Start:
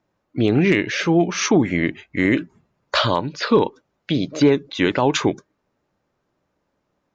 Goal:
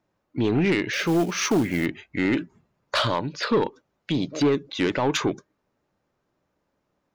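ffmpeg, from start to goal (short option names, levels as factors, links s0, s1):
-filter_complex "[0:a]asoftclip=type=tanh:threshold=0.251,asettb=1/sr,asplit=3[s0][s1][s2];[s0]atrim=end=0.934[s3];[s1]atrim=start=0.93:end=1.86,asetpts=PTS-STARTPTS,afade=t=in:d=0.004:c=qsin,afade=t=out:st=0.926:d=0.004:c=qsin,acrusher=bits=5:mode=log:mix=0:aa=0.000001[s4];[s2]atrim=start=1.856[s5];[s3][s4]acrossfade=d=0.004:c1=hsin:c2=qsin[s6];[s6][s5]acrossfade=d=0.004:c1=qsin:c2=hsin,volume=0.75"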